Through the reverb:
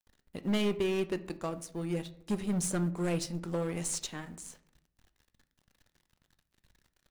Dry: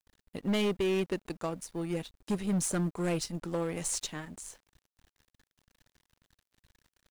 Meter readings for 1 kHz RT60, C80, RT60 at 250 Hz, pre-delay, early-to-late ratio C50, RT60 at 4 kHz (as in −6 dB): 0.60 s, 19.5 dB, 0.85 s, 5 ms, 16.5 dB, 0.40 s